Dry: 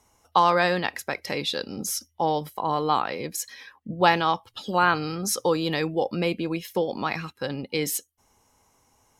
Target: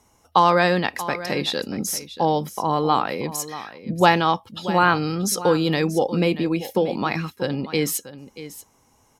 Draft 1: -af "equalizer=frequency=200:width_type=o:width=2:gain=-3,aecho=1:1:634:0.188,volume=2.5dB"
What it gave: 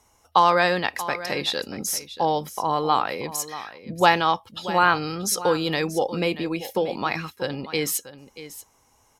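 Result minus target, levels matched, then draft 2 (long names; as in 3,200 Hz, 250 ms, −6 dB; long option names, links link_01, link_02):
250 Hz band −4.0 dB
-af "equalizer=frequency=200:width_type=o:width=2:gain=4.5,aecho=1:1:634:0.188,volume=2.5dB"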